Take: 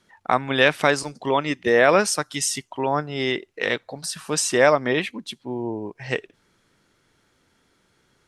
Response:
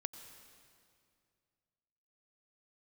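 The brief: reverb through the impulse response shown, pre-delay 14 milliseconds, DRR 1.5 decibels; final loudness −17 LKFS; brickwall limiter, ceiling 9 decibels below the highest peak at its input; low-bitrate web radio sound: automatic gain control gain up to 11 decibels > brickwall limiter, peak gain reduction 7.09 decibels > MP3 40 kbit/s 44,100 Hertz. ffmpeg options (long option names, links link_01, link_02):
-filter_complex "[0:a]alimiter=limit=-11dB:level=0:latency=1,asplit=2[link_01][link_02];[1:a]atrim=start_sample=2205,adelay=14[link_03];[link_02][link_03]afir=irnorm=-1:irlink=0,volume=0.5dB[link_04];[link_01][link_04]amix=inputs=2:normalize=0,dynaudnorm=maxgain=11dB,alimiter=limit=-13dB:level=0:latency=1,volume=8.5dB" -ar 44100 -c:a libmp3lame -b:a 40k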